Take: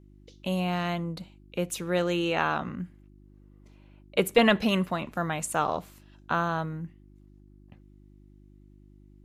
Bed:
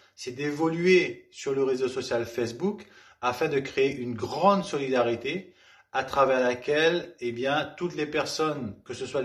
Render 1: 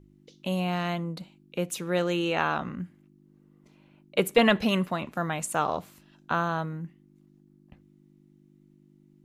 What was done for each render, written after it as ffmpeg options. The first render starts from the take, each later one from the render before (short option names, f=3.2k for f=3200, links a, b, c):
-af "bandreject=f=50:t=h:w=4,bandreject=f=100:t=h:w=4"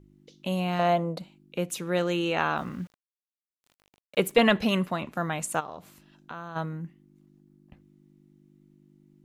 -filter_complex "[0:a]asettb=1/sr,asplit=3[a][b][c];[a]atrim=end=0.794[d];[b]atrim=start=0.79:end=1.19,asetpts=PTS-STARTPTS,afade=t=in:d=0.004:c=qsin,afade=t=out:st=0.396:d=0.004:c=qsin,equalizer=f=610:w=1.5:g=14.5[e];[c]atrim=start=1.186[f];[d][e]acrossfade=d=0.004:c1=hsin:c2=qsin[g];[g][f]acrossfade=d=0.004:c1=qsin:c2=hsin,asettb=1/sr,asplit=3[h][i][j];[h]atrim=end=2.574[k];[i]atrim=start=2.57:end=4.32,asetpts=PTS-STARTPTS,afade=t=in:d=0.004:c=qsin,afade=t=out:st=1.746:d=0.004:c=qsin,aeval=exprs='val(0)*gte(abs(val(0)),0.00355)':c=same[l];[j]atrim=start=4.316[m];[k][l]acrossfade=d=0.004:c1=hsin:c2=qsin[n];[n][m]acrossfade=d=0.004:c1=qsin:c2=hsin,asplit=3[o][p][q];[o]afade=t=out:st=5.59:d=0.02[r];[p]acompressor=threshold=-41dB:ratio=2.5:attack=3.2:release=140:knee=1:detection=peak,afade=t=in:st=5.59:d=0.02,afade=t=out:st=6.55:d=0.02[s];[q]afade=t=in:st=6.55:d=0.02[t];[r][s][t]amix=inputs=3:normalize=0"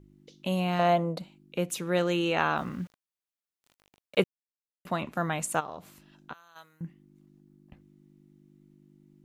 -filter_complex "[0:a]asettb=1/sr,asplit=3[a][b][c];[a]atrim=end=6.334[d];[b]atrim=start=6.33:end=6.81,asetpts=PTS-STARTPTS,afade=t=in:d=0.004:c=qsin,afade=t=out:st=0.476:d=0.004:c=qsin,aderivative[e];[c]atrim=start=6.806[f];[d][e]acrossfade=d=0.004:c1=hsin:c2=qsin[g];[g][f]acrossfade=d=0.004:c1=qsin:c2=hsin,asplit=3[h][i][j];[h]atrim=end=4.24,asetpts=PTS-STARTPTS,afade=t=out:st=4.236:d=0.004:c=hsin[k];[i]atrim=start=4.24:end=4.85,asetpts=PTS-STARTPTS,volume=0[l];[j]atrim=start=4.85,asetpts=PTS-STARTPTS,afade=t=in:d=0.004:c=hsin[m];[k][l][m]concat=n=3:v=0:a=1"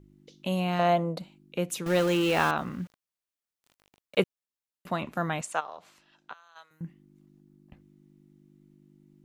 -filter_complex "[0:a]asettb=1/sr,asplit=3[a][b][c];[a]atrim=end=1.864[d];[b]atrim=start=1.86:end=2.51,asetpts=PTS-STARTPTS,afade=t=in:d=0.004:c=qsin,afade=t=out:st=0.646:d=0.004:c=qsin,aeval=exprs='val(0)+0.5*0.0335*sgn(val(0))':c=same[e];[c]atrim=start=2.506[f];[d][e]acrossfade=d=0.004:c1=hsin:c2=qsin[g];[g][f]acrossfade=d=0.004:c1=qsin:c2=hsin,asettb=1/sr,asplit=3[h][i][j];[h]atrim=end=5.414[k];[i]atrim=start=5.41:end=6.71,asetpts=PTS-STARTPTS,afade=t=in:d=0.004:c=qsin,afade=t=out:st=1.296:d=0.004:c=qsin,acrossover=split=480 7700:gain=0.158 1 0.126[l][m][n];[l][m][n]amix=inputs=3:normalize=0[o];[j]atrim=start=6.706[p];[k][o]acrossfade=d=0.004:c1=hsin:c2=qsin[q];[q][p]acrossfade=d=0.004:c1=qsin:c2=hsin"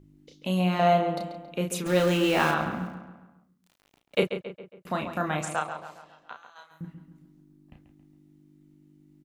-filter_complex "[0:a]asplit=2[a][b];[b]adelay=33,volume=-5dB[c];[a][c]amix=inputs=2:normalize=0,asplit=2[d][e];[e]adelay=137,lowpass=f=3.4k:p=1,volume=-8.5dB,asplit=2[f][g];[g]adelay=137,lowpass=f=3.4k:p=1,volume=0.5,asplit=2[h][i];[i]adelay=137,lowpass=f=3.4k:p=1,volume=0.5,asplit=2[j][k];[k]adelay=137,lowpass=f=3.4k:p=1,volume=0.5,asplit=2[l][m];[m]adelay=137,lowpass=f=3.4k:p=1,volume=0.5,asplit=2[n][o];[o]adelay=137,lowpass=f=3.4k:p=1,volume=0.5[p];[d][f][h][j][l][n][p]amix=inputs=7:normalize=0"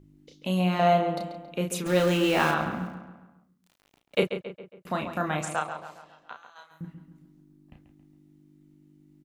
-af anull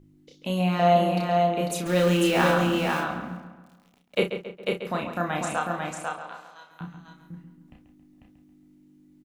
-filter_complex "[0:a]asplit=2[a][b];[b]adelay=29,volume=-7.5dB[c];[a][c]amix=inputs=2:normalize=0,asplit=2[d][e];[e]aecho=0:1:496:0.668[f];[d][f]amix=inputs=2:normalize=0"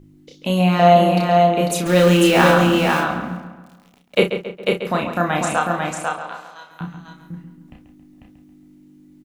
-af "volume=8dB,alimiter=limit=-2dB:level=0:latency=1"